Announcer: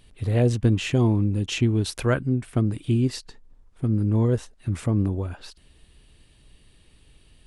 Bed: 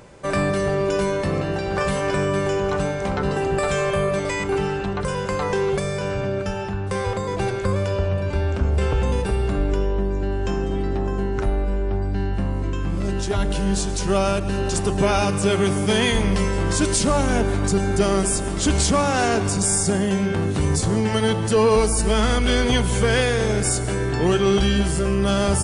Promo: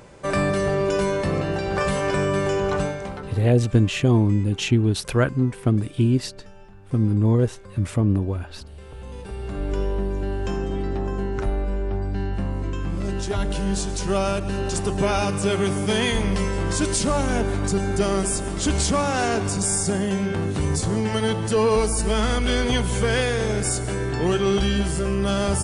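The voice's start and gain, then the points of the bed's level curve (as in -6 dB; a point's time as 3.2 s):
3.10 s, +2.5 dB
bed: 2.81 s -0.5 dB
3.59 s -21.5 dB
8.83 s -21.5 dB
9.8 s -2.5 dB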